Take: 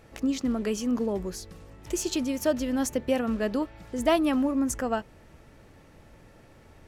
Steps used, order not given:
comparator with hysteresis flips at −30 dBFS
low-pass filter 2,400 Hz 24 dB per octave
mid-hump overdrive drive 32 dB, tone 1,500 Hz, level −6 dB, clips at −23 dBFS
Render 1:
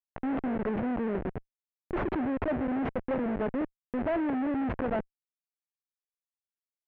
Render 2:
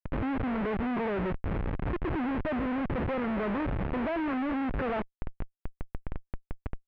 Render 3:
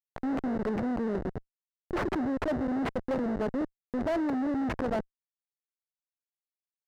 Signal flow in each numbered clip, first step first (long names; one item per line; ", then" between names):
comparator with hysteresis, then mid-hump overdrive, then low-pass filter
mid-hump overdrive, then comparator with hysteresis, then low-pass filter
comparator with hysteresis, then low-pass filter, then mid-hump overdrive